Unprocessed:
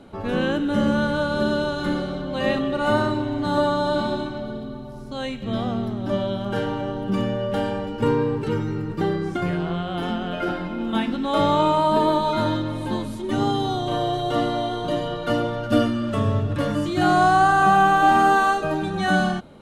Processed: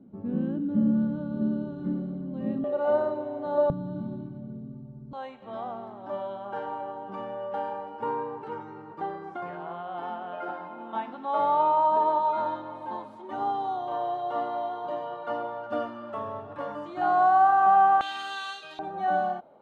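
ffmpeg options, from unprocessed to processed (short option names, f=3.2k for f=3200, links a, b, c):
-af "asetnsamples=n=441:p=0,asendcmd='2.64 bandpass f 610;3.7 bandpass f 160;5.13 bandpass f 870;18.01 bandpass f 3600;18.79 bandpass f 710',bandpass=f=210:t=q:w=2.7:csg=0"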